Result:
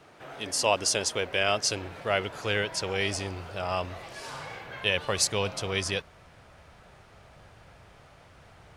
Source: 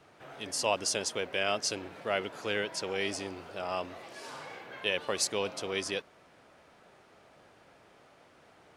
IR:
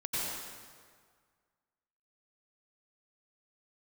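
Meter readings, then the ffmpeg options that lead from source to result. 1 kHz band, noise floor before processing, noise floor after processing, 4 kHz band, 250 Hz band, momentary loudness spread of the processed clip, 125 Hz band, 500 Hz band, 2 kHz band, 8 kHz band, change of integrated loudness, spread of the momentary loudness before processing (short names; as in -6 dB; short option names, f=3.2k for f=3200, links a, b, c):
+4.5 dB, -60 dBFS, -55 dBFS, +5.0 dB, +3.0 dB, 14 LU, +12.0 dB, +3.5 dB, +5.0 dB, +5.0 dB, +4.5 dB, 14 LU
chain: -af "asubboost=boost=9:cutoff=96,volume=5dB"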